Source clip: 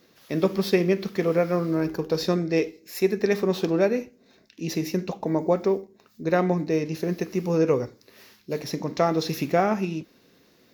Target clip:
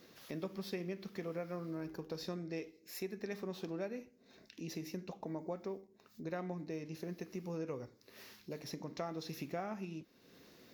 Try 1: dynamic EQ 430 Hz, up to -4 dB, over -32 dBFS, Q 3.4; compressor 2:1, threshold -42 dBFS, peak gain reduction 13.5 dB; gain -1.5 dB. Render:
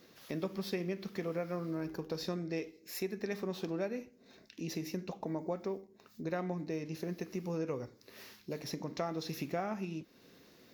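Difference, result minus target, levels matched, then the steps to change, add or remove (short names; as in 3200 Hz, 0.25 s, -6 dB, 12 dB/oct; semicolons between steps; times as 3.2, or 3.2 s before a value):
compressor: peak gain reduction -4.5 dB
change: compressor 2:1, threshold -51 dBFS, peak gain reduction 18 dB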